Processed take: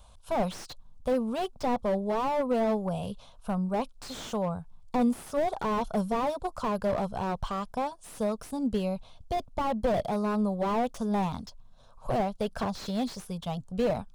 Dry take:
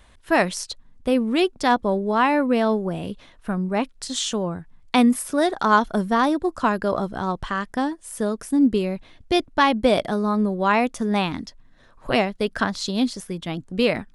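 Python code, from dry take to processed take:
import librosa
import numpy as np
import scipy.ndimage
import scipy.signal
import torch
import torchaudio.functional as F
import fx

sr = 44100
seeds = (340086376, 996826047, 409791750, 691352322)

y = fx.fixed_phaser(x, sr, hz=780.0, stages=4)
y = fx.slew_limit(y, sr, full_power_hz=37.0)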